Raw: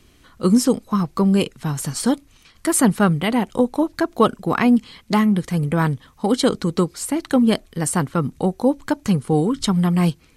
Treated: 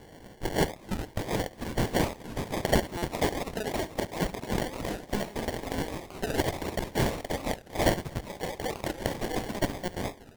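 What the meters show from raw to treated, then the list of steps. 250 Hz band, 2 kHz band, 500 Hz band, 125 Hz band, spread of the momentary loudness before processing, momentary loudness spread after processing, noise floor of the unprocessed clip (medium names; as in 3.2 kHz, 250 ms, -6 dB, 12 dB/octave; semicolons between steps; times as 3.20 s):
-16.0 dB, -5.5 dB, -8.5 dB, -12.0 dB, 6 LU, 8 LU, -53 dBFS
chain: single-diode clipper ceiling -15 dBFS; high-pass 880 Hz 12 dB/octave; tilt EQ +4.5 dB/octave; band-stop 3.7 kHz, Q 5.4; compression 2.5:1, threshold -28 dBFS, peak gain reduction 16 dB; vibrato 6.3 Hz 25 cents; sample-and-hold 35×; ever faster or slower copies 788 ms, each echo +2 st, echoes 2, each echo -6 dB; delay 70 ms -17.5 dB; buffer glitch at 2.97 s, samples 256, times 8; warped record 45 rpm, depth 250 cents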